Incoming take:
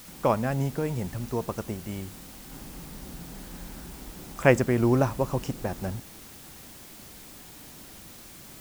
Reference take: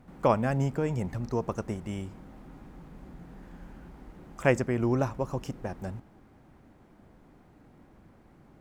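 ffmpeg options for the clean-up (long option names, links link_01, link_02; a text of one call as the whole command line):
ffmpeg -i in.wav -af "afwtdn=0.004,asetnsamples=nb_out_samples=441:pad=0,asendcmd='2.51 volume volume -4.5dB',volume=0dB" out.wav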